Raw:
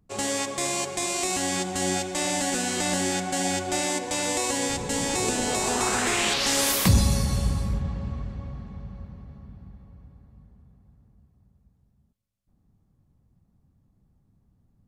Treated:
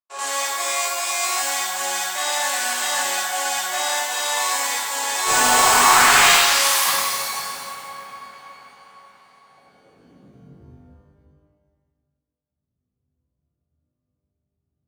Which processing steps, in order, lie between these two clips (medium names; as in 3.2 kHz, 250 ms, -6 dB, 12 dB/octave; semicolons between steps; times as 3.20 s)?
gate -54 dBFS, range -23 dB; high-pass sweep 1 kHz -> 70 Hz, 9.38–10.84 s; 5.26–6.32 s: power-law waveshaper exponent 0.5; pitch-shifted reverb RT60 1.3 s, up +12 st, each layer -8 dB, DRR -9 dB; trim -5.5 dB